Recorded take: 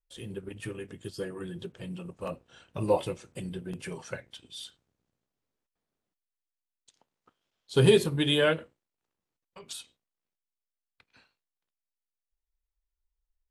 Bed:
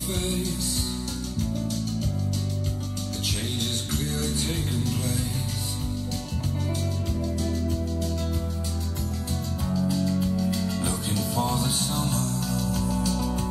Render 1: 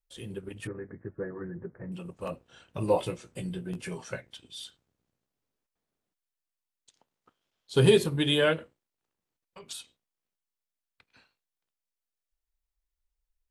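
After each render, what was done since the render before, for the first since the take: 0.67–1.92 s: steep low-pass 2 kHz 72 dB/octave; 2.94–4.21 s: doubling 17 ms -7 dB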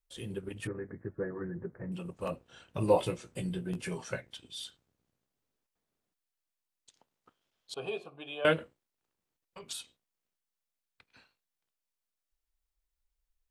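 7.74–8.45 s: vowel filter a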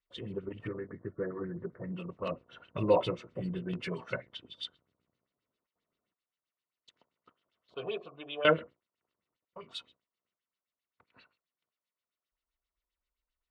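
LFO low-pass sine 7.6 Hz 770–4100 Hz; comb of notches 810 Hz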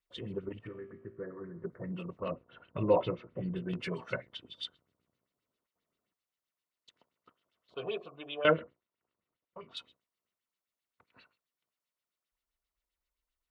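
0.59–1.64 s: feedback comb 56 Hz, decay 1.2 s; 2.20–3.56 s: distance through air 300 m; 8.34–9.77 s: distance through air 180 m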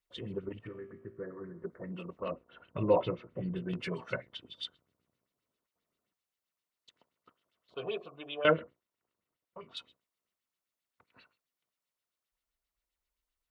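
1.53–2.62 s: peaking EQ 120 Hz -10 dB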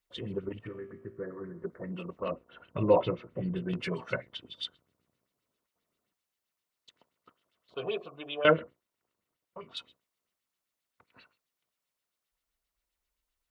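trim +3 dB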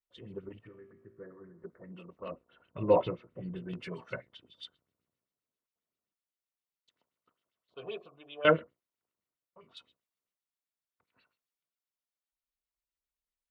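transient shaper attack -1 dB, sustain +4 dB; upward expansion 1.5:1, over -44 dBFS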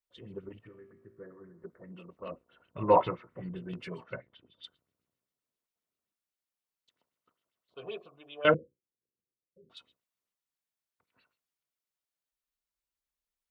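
2.79–3.49 s: high-order bell 1.3 kHz +9 dB; 4.03–4.64 s: distance through air 290 m; 8.54–9.70 s: rippled Chebyshev low-pass 540 Hz, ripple 3 dB

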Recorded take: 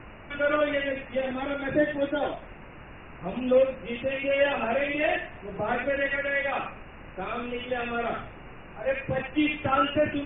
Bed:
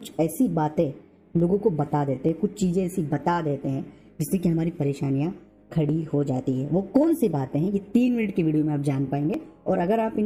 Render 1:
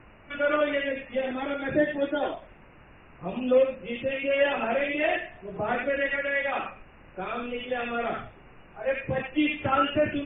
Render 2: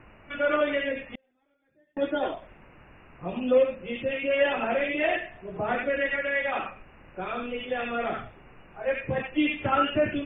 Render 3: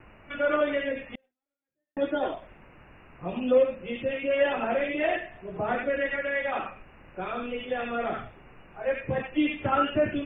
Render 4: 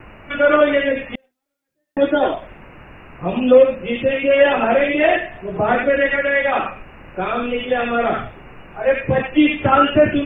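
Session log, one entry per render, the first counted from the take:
noise print and reduce 7 dB
1.15–1.97 s: inverted gate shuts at -29 dBFS, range -41 dB
gate with hold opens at -46 dBFS; dynamic bell 2.6 kHz, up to -4 dB, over -39 dBFS, Q 1.2
trim +11.5 dB; peak limiter -2 dBFS, peak gain reduction 1.5 dB

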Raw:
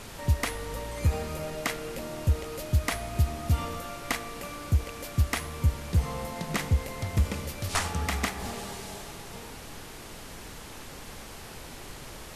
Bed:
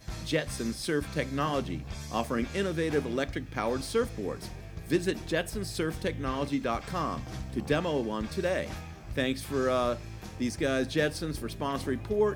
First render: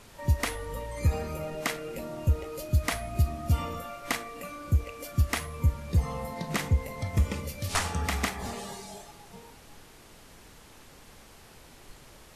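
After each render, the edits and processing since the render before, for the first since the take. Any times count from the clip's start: noise print and reduce 9 dB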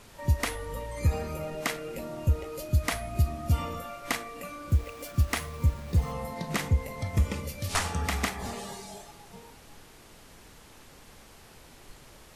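4.70–6.12 s: send-on-delta sampling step -44 dBFS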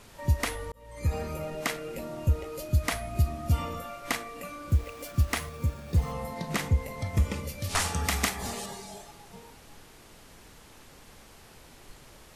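0.72–1.21 s: fade in; 5.49–5.94 s: comb of notches 1 kHz; 7.79–8.66 s: treble shelf 3.7 kHz +7.5 dB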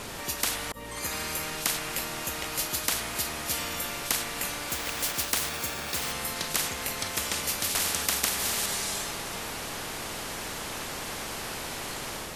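level rider gain up to 4 dB; spectrum-flattening compressor 10:1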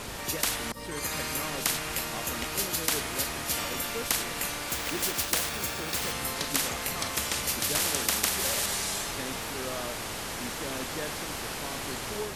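add bed -10.5 dB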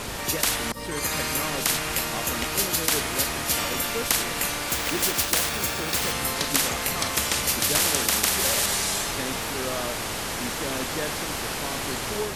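trim +5.5 dB; peak limiter -3 dBFS, peak gain reduction 2.5 dB

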